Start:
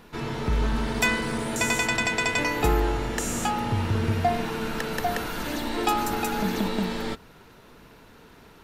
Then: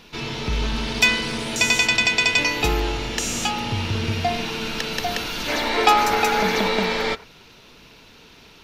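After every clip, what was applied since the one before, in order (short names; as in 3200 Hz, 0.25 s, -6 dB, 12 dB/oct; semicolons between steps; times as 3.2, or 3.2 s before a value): spectral gain 5.49–7.24, 370–2400 Hz +9 dB; band shelf 3800 Hz +10.5 dB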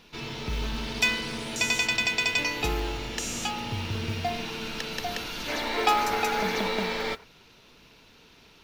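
modulation noise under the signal 28 dB; gain -7 dB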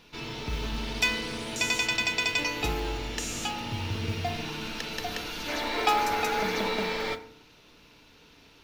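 FDN reverb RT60 0.63 s, low-frequency decay 1.6×, high-frequency decay 0.55×, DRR 9.5 dB; gain -1.5 dB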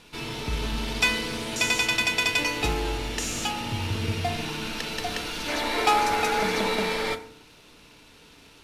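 CVSD 64 kbps; wavefolder -14 dBFS; gain +3.5 dB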